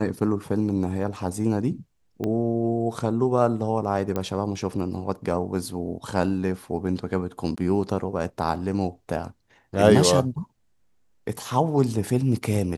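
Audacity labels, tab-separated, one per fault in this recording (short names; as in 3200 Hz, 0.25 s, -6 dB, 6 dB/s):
2.240000	2.240000	pop -16 dBFS
4.160000	4.160000	pop -14 dBFS
7.560000	7.580000	gap 15 ms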